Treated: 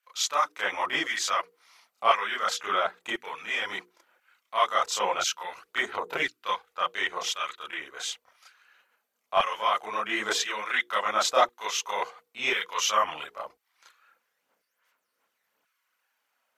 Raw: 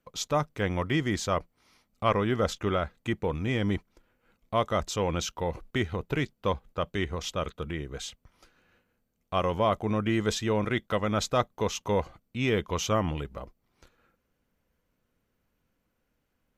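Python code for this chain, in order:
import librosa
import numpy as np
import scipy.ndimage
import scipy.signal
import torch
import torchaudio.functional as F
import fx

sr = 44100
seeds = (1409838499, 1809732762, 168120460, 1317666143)

y = fx.hum_notches(x, sr, base_hz=60, count=8)
y = fx.filter_lfo_highpass(y, sr, shape='saw_down', hz=0.96, low_hz=700.0, high_hz=1600.0, q=1.1)
y = fx.chorus_voices(y, sr, voices=6, hz=1.4, base_ms=30, depth_ms=3.0, mix_pct=65)
y = F.gain(torch.from_numpy(y), 8.5).numpy()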